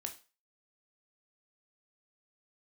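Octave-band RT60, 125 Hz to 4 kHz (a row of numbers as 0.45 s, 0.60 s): 0.25 s, 0.30 s, 0.35 s, 0.35 s, 0.35 s, 0.35 s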